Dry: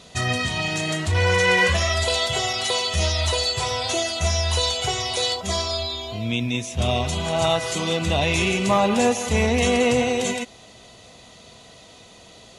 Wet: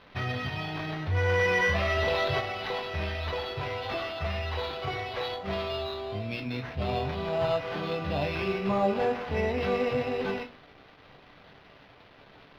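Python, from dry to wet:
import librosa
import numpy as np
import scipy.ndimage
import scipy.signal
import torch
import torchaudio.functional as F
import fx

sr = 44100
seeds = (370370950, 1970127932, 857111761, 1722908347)

p1 = fx.hum_notches(x, sr, base_hz=60, count=4)
p2 = fx.rider(p1, sr, range_db=10, speed_s=0.5)
p3 = p1 + (p2 * librosa.db_to_amplitude(-2.0))
p4 = fx.add_hum(p3, sr, base_hz=60, snr_db=33)
p5 = fx.quant_dither(p4, sr, seeds[0], bits=6, dither='none')
p6 = fx.resonator_bank(p5, sr, root=43, chord='sus4', decay_s=0.22)
p7 = fx.sample_hold(p6, sr, seeds[1], rate_hz=7800.0, jitter_pct=0)
p8 = fx.air_absorb(p7, sr, metres=300.0)
y = fx.env_flatten(p8, sr, amount_pct=50, at=(1.27, 2.39), fade=0.02)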